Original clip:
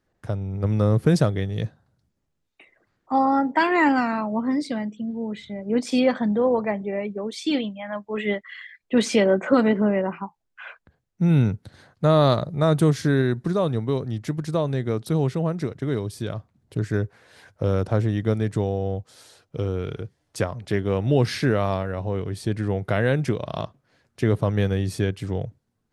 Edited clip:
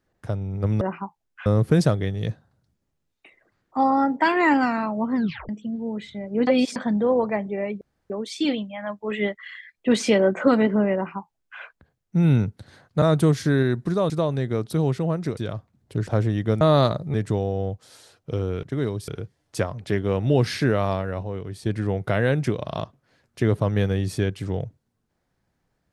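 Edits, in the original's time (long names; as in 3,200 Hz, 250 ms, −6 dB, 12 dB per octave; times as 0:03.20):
0:04.51: tape stop 0.33 s
0:05.82–0:06.11: reverse
0:07.16: splice in room tone 0.29 s
0:10.01–0:10.66: duplicate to 0:00.81
0:12.08–0:12.61: move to 0:18.40
0:13.69–0:14.46: remove
0:15.73–0:16.18: move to 0:19.89
0:16.88–0:17.86: remove
0:22.04–0:22.47: clip gain −4.5 dB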